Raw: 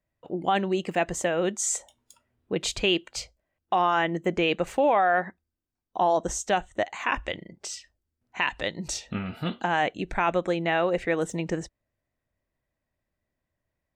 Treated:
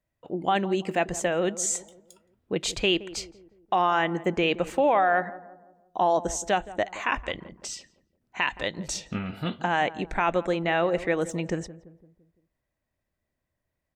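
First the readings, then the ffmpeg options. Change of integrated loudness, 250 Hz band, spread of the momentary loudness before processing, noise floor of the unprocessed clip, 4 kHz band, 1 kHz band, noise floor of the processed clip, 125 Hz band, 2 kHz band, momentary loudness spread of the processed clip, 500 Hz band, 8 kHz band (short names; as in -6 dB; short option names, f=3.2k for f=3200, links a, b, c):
0.0 dB, 0.0 dB, 13 LU, -84 dBFS, 0.0 dB, 0.0 dB, -82 dBFS, +0.5 dB, 0.0 dB, 13 LU, 0.0 dB, 0.0 dB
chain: -filter_complex "[0:a]asplit=2[a][b];[b]adelay=170,lowpass=f=910:p=1,volume=-15dB,asplit=2[c][d];[d]adelay=170,lowpass=f=910:p=1,volume=0.51,asplit=2[e][f];[f]adelay=170,lowpass=f=910:p=1,volume=0.51,asplit=2[g][h];[h]adelay=170,lowpass=f=910:p=1,volume=0.51,asplit=2[i][j];[j]adelay=170,lowpass=f=910:p=1,volume=0.51[k];[a][c][e][g][i][k]amix=inputs=6:normalize=0"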